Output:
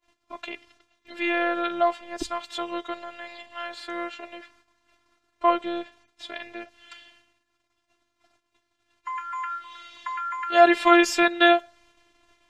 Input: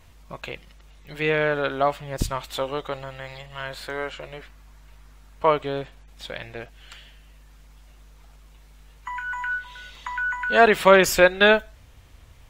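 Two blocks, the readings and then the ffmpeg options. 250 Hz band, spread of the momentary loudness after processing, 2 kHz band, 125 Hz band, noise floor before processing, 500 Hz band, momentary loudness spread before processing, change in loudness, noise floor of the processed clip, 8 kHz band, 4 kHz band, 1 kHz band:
+3.0 dB, 22 LU, -4.0 dB, under -20 dB, -50 dBFS, -4.0 dB, 23 LU, -1.5 dB, -76 dBFS, -5.0 dB, -1.5 dB, +1.0 dB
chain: -af "highpass=150,lowpass=6700,agate=range=0.0562:threshold=0.00141:ratio=16:detection=peak,afftfilt=real='hypot(re,im)*cos(PI*b)':imag='0':win_size=512:overlap=0.75,volume=1.33"

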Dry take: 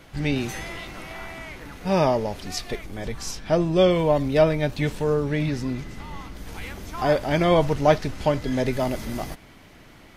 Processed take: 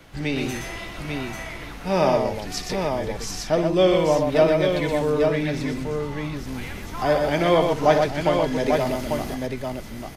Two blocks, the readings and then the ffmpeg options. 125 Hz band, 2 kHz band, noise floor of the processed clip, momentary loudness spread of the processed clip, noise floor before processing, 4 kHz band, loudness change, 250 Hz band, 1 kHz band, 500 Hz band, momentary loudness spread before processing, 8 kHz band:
-2.0 dB, +2.5 dB, -36 dBFS, 13 LU, -49 dBFS, +2.0 dB, +1.0 dB, +1.0 dB, +2.5 dB, +2.5 dB, 17 LU, +2.5 dB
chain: -filter_complex "[0:a]aecho=1:1:59|123|843:0.251|0.562|0.562,acrossover=split=220|730|2600[s0][s1][s2][s3];[s0]alimiter=level_in=1.5:limit=0.0631:level=0:latency=1,volume=0.668[s4];[s4][s1][s2][s3]amix=inputs=4:normalize=0"

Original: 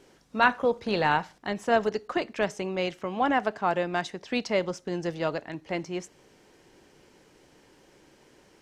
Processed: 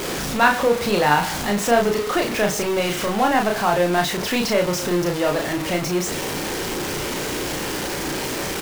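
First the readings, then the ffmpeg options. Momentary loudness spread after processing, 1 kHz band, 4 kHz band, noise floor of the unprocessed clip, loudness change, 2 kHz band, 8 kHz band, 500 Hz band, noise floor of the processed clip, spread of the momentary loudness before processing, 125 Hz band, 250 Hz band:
7 LU, +7.0 dB, +12.5 dB, -60 dBFS, +7.0 dB, +7.5 dB, +22.0 dB, +8.0 dB, -27 dBFS, 10 LU, +10.5 dB, +9.0 dB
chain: -filter_complex "[0:a]aeval=exprs='val(0)+0.5*0.0596*sgn(val(0))':c=same,asplit=2[s0][s1];[s1]adelay=34,volume=0.668[s2];[s0][s2]amix=inputs=2:normalize=0,volume=1.33"

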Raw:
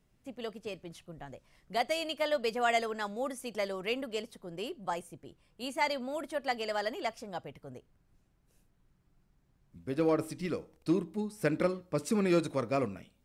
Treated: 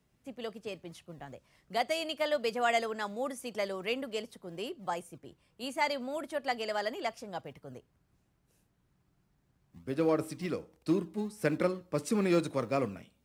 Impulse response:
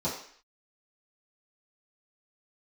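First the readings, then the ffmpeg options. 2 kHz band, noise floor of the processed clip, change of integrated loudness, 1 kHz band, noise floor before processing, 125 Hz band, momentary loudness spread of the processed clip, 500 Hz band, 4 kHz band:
0.0 dB, -74 dBFS, 0.0 dB, 0.0 dB, -71 dBFS, -0.5 dB, 18 LU, 0.0 dB, 0.0 dB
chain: -filter_complex "[0:a]highpass=56,acrossover=split=130|2600[s0][s1][s2];[s0]acrusher=samples=39:mix=1:aa=0.000001:lfo=1:lforange=23.4:lforate=2.7[s3];[s3][s1][s2]amix=inputs=3:normalize=0"

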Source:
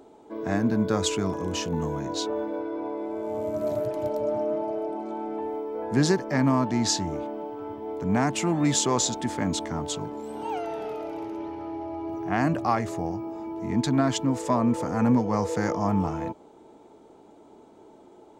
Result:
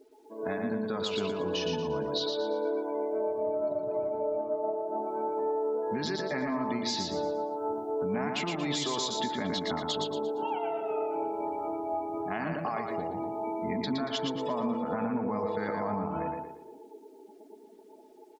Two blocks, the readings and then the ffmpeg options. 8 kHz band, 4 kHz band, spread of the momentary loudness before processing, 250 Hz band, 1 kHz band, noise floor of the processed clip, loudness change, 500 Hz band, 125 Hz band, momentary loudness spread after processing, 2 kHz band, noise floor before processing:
-12.0 dB, -1.0 dB, 11 LU, -8.0 dB, -3.0 dB, -54 dBFS, -4.5 dB, -1.5 dB, -12.0 dB, 4 LU, -4.0 dB, -52 dBFS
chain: -af "highshelf=f=5500:t=q:w=1.5:g=-12.5,afftdn=nr=33:nf=-42,bass=f=250:g=-8,treble=f=4000:g=9,dynaudnorm=f=340:g=7:m=2.37,tremolo=f=4:d=0.59,acrusher=bits=11:mix=0:aa=0.000001,alimiter=limit=0.168:level=0:latency=1:release=24,aecho=1:1:4.7:0.37,acompressor=threshold=0.0316:ratio=6,aecho=1:1:116|232|348|464|580:0.631|0.233|0.0864|0.032|0.0118"

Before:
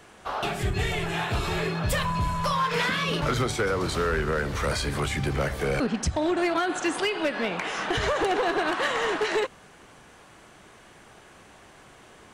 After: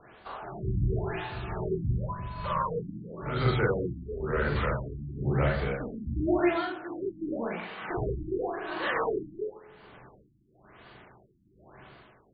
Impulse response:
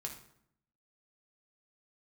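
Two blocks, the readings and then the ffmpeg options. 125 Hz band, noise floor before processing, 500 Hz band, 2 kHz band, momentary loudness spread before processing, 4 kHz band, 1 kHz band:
-0.5 dB, -52 dBFS, -4.0 dB, -8.0 dB, 4 LU, -14.0 dB, -6.5 dB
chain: -filter_complex "[0:a]asplit=2[s0][s1];[1:a]atrim=start_sample=2205,asetrate=40572,aresample=44100,adelay=40[s2];[s1][s2]afir=irnorm=-1:irlink=0,volume=1.41[s3];[s0][s3]amix=inputs=2:normalize=0,tremolo=f=1.1:d=0.72,afftfilt=real='re*lt(b*sr/1024,330*pow(4900/330,0.5+0.5*sin(2*PI*0.94*pts/sr)))':imag='im*lt(b*sr/1024,330*pow(4900/330,0.5+0.5*sin(2*PI*0.94*pts/sr)))':win_size=1024:overlap=0.75,volume=0.631"

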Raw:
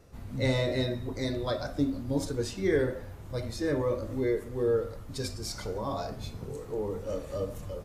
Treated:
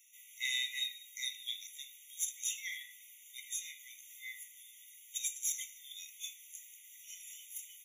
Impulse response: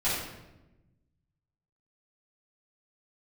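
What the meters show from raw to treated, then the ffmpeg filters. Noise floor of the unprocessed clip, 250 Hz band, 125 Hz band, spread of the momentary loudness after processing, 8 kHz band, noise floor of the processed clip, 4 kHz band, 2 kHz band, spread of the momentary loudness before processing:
-44 dBFS, under -40 dB, under -40 dB, 16 LU, +8.0 dB, -58 dBFS, +1.5 dB, -3.0 dB, 10 LU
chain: -filter_complex "[0:a]aderivative,asplit=2[s0][s1];[s1]asoftclip=type=tanh:threshold=0.0158,volume=0.316[s2];[s0][s2]amix=inputs=2:normalize=0,aeval=exprs='0.0531*(cos(1*acos(clip(val(0)/0.0531,-1,1)))-cos(1*PI/2))+0.00075*(cos(3*acos(clip(val(0)/0.0531,-1,1)))-cos(3*PI/2))+0.0015*(cos(6*acos(clip(val(0)/0.0531,-1,1)))-cos(6*PI/2))+0.000473*(cos(7*acos(clip(val(0)/0.0531,-1,1)))-cos(7*PI/2))':c=same,afftfilt=real='re*eq(mod(floor(b*sr/1024/1900),2),1)':imag='im*eq(mod(floor(b*sr/1024/1900),2),1)':win_size=1024:overlap=0.75,volume=2.82"

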